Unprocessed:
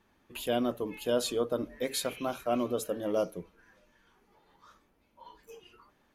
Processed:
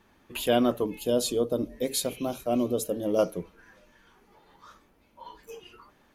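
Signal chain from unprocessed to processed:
0:00.86–0:03.19: parametric band 1,500 Hz −13.5 dB 1.8 octaves
level +6.5 dB

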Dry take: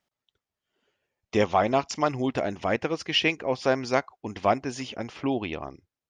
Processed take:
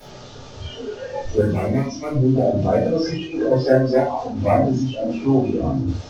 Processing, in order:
linear delta modulator 32 kbit/s, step −24.5 dBFS
0:03.01–0:03.50: compressor whose output falls as the input rises −30 dBFS, ratio −1
octave-band graphic EQ 125/500/2,000 Hz +5/+5/−10 dB
hard clipping −15 dBFS, distortion −15 dB
convolution reverb RT60 0.55 s, pre-delay 3 ms, DRR −12.5 dB
noise reduction from a noise print of the clip's start 14 dB
0:01.41–0:02.36: parametric band 760 Hz −15 dB 1.1 octaves
level −11 dB

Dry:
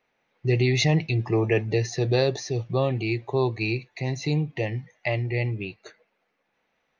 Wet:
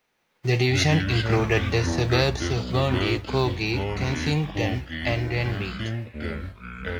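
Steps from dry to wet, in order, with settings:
spectral envelope flattened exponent 0.6
delay with pitch and tempo change per echo 102 ms, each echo −5 semitones, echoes 3, each echo −6 dB

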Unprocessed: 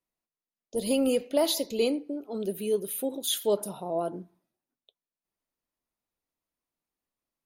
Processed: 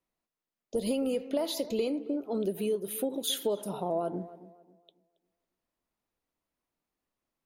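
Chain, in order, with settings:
high-shelf EQ 3,800 Hz −7.5 dB
downward compressor 10 to 1, threshold −31 dBFS, peak gain reduction 11.5 dB
on a send: tape delay 273 ms, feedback 35%, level −15 dB, low-pass 1,300 Hz
on the sum: level +4.5 dB

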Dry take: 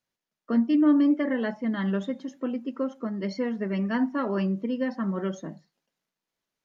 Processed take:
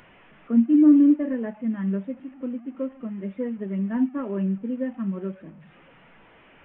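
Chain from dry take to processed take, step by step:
linear delta modulator 16 kbit/s, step −33.5 dBFS
every bin expanded away from the loudest bin 1.5 to 1
level +4.5 dB

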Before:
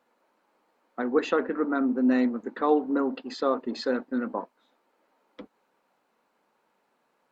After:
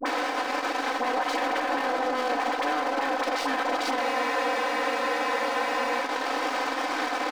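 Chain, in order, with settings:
compressor on every frequency bin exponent 0.2
full-wave rectification
elliptic high-pass filter 280 Hz, stop band 40 dB
comb filter 3.9 ms, depth 65%
all-pass dispersion highs, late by 59 ms, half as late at 820 Hz
brickwall limiter −21 dBFS, peak gain reduction 11 dB
transient designer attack +2 dB, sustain −10 dB
frozen spectrum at 0:04.04, 1.99 s
level +2.5 dB

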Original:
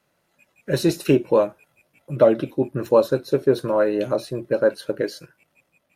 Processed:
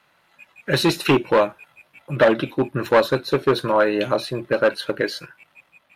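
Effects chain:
dynamic equaliser 990 Hz, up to −4 dB, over −32 dBFS, Q 0.74
in parallel at −4 dB: wave folding −14 dBFS
on the sum: flat-topped bell 1,800 Hz +10 dB 2.7 octaves
level −2.5 dB

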